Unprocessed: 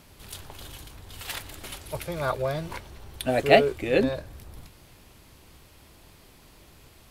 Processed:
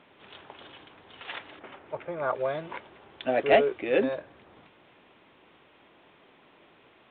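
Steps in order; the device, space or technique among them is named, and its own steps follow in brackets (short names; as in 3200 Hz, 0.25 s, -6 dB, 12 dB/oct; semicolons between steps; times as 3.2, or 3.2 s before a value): 1.59–2.35 LPF 1800 Hz 12 dB/oct; telephone (BPF 280–3200 Hz; soft clip -11.5 dBFS, distortion -15 dB; A-law 64 kbps 8000 Hz)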